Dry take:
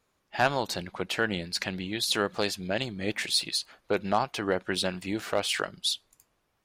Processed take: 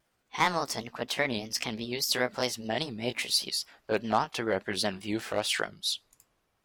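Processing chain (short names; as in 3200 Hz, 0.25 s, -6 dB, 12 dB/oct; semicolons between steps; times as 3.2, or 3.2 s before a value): gliding pitch shift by +4.5 st ending unshifted; vibrato 5 Hz 91 cents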